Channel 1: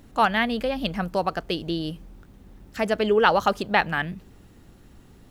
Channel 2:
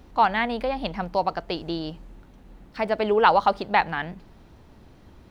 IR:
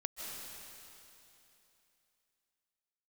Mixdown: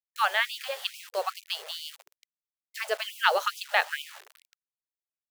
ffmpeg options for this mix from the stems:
-filter_complex "[0:a]bandreject=frequency=50:width_type=h:width=6,bandreject=frequency=100:width_type=h:width=6,bandreject=frequency=150:width_type=h:width=6,bandreject=frequency=200:width_type=h:width=6,volume=-0.5dB,asplit=2[link_01][link_02];[link_02]volume=-21dB[link_03];[1:a]lowpass=frequency=1500:poles=1,bandreject=frequency=80.62:width_type=h:width=4,bandreject=frequency=161.24:width_type=h:width=4,bandreject=frequency=241.86:width_type=h:width=4,bandreject=frequency=322.48:width_type=h:width=4,bandreject=frequency=403.1:width_type=h:width=4,bandreject=frequency=483.72:width_type=h:width=4,bandreject=frequency=564.34:width_type=h:width=4,volume=-1,volume=-7dB,asplit=2[link_04][link_05];[link_05]volume=-22dB[link_06];[2:a]atrim=start_sample=2205[link_07];[link_03][link_06]amix=inputs=2:normalize=0[link_08];[link_08][link_07]afir=irnorm=-1:irlink=0[link_09];[link_01][link_04][link_09]amix=inputs=3:normalize=0,lowshelf=frequency=200:gain=-9.5,acrusher=bits=6:mix=0:aa=0.000001,afftfilt=real='re*gte(b*sr/1024,380*pow(2300/380,0.5+0.5*sin(2*PI*2.3*pts/sr)))':imag='im*gte(b*sr/1024,380*pow(2300/380,0.5+0.5*sin(2*PI*2.3*pts/sr)))':win_size=1024:overlap=0.75"

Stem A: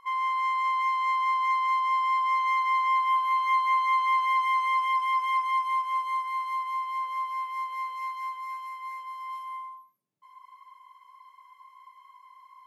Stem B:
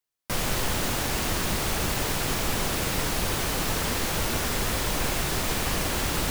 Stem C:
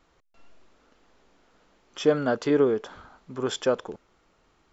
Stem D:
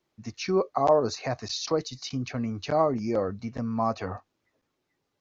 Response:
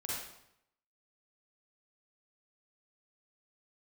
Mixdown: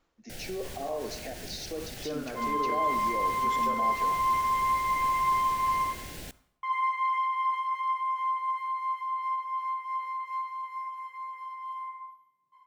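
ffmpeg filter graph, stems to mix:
-filter_complex "[0:a]highshelf=frequency=4200:gain=-7,flanger=delay=7:depth=2.2:regen=-73:speed=1.2:shape=triangular,adelay=2300,volume=-2dB,asplit=3[link_01][link_02][link_03];[link_01]atrim=end=5.85,asetpts=PTS-STARTPTS,afade=type=out:start_time=5.846:duration=0.004:curve=hsin[link_04];[link_02]atrim=start=5.85:end=6.63,asetpts=PTS-STARTPTS,volume=0[link_05];[link_03]atrim=start=6.63,asetpts=PTS-STARTPTS,afade=type=in:duration=0.004:curve=hsin[link_06];[link_04][link_05][link_06]concat=n=3:v=0:a=1,asplit=2[link_07][link_08];[link_08]volume=-3dB[link_09];[1:a]volume=-15dB,asplit=2[link_10][link_11];[link_11]volume=-21dB[link_12];[2:a]volume=-9.5dB,asplit=3[link_13][link_14][link_15];[link_14]volume=-11dB[link_16];[3:a]highpass=frequency=230:width=0.5412,highpass=frequency=230:width=1.3066,volume=-7.5dB,asplit=2[link_17][link_18];[link_18]volume=-12.5dB[link_19];[link_15]apad=whole_len=278260[link_20];[link_10][link_20]sidechaincompress=threshold=-34dB:ratio=8:attack=16:release=490[link_21];[link_07][link_13]amix=inputs=2:normalize=0,tremolo=f=2.8:d=0.7,alimiter=level_in=7dB:limit=-24dB:level=0:latency=1,volume=-7dB,volume=0dB[link_22];[link_21][link_17]amix=inputs=2:normalize=0,asuperstop=centerf=1100:order=4:qfactor=1.7,alimiter=level_in=4.5dB:limit=-24dB:level=0:latency=1:release=54,volume=-4.5dB,volume=0dB[link_23];[4:a]atrim=start_sample=2205[link_24];[link_09][link_12][link_16][link_19]amix=inputs=4:normalize=0[link_25];[link_25][link_24]afir=irnorm=-1:irlink=0[link_26];[link_22][link_23][link_26]amix=inputs=3:normalize=0"

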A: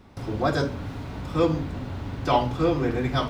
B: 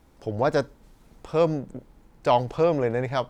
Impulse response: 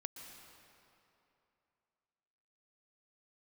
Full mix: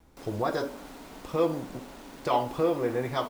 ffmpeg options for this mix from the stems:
-filter_complex "[0:a]highpass=frequency=230:width=0.5412,highpass=frequency=230:width=1.3066,adynamicequalizer=threshold=0.0178:dfrequency=700:dqfactor=0.8:tfrequency=700:tqfactor=0.8:attack=5:release=100:ratio=0.375:range=3:mode=boostabove:tftype=bell,acrusher=bits=6:mix=0:aa=0.000001,volume=-8.5dB[link_01];[1:a]acompressor=threshold=-27dB:ratio=6,adelay=2.6,volume=-1.5dB[link_02];[link_01][link_02]amix=inputs=2:normalize=0"

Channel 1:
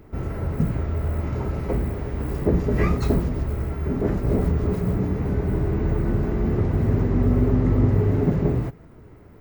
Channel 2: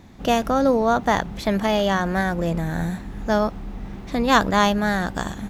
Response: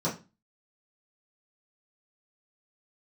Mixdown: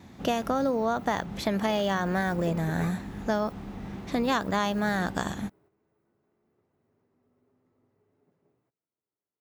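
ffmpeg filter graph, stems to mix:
-filter_complex "[0:a]highpass=frequency=830:poles=1,equalizer=frequency=1900:width=1.4:gain=-4.5,volume=-6dB[link_01];[1:a]volume=-1.5dB,asplit=2[link_02][link_03];[link_03]apad=whole_len=414780[link_04];[link_01][link_04]sidechaingate=range=-25dB:threshold=-25dB:ratio=16:detection=peak[link_05];[link_05][link_02]amix=inputs=2:normalize=0,agate=range=-8dB:threshold=-57dB:ratio=16:detection=peak,highpass=79,acompressor=threshold=-23dB:ratio=6"

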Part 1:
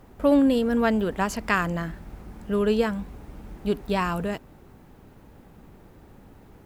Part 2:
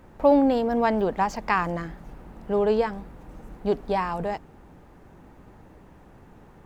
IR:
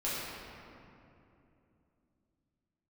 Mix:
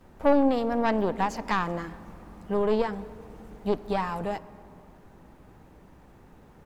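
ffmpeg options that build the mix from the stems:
-filter_complex "[0:a]equalizer=frequency=5700:width=0.38:gain=7,acompressor=threshold=-24dB:ratio=6,volume=-12dB[link_01];[1:a]aeval=exprs='(tanh(4.47*val(0)+0.7)-tanh(0.7))/4.47':channel_layout=same,adelay=9.9,volume=0dB,asplit=3[link_02][link_03][link_04];[link_03]volume=-22.5dB[link_05];[link_04]apad=whole_len=293694[link_06];[link_01][link_06]sidechaincompress=threshold=-27dB:ratio=8:attack=16:release=250[link_07];[2:a]atrim=start_sample=2205[link_08];[link_05][link_08]afir=irnorm=-1:irlink=0[link_09];[link_07][link_02][link_09]amix=inputs=3:normalize=0"

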